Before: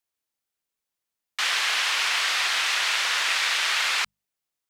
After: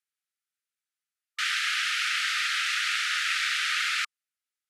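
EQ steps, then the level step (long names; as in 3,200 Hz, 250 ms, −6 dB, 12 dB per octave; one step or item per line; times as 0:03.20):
linear-phase brick-wall high-pass 1,200 Hz
low-pass filter 12,000 Hz 24 dB per octave
parametric band 6,200 Hz −5.5 dB 2.7 octaves
0.0 dB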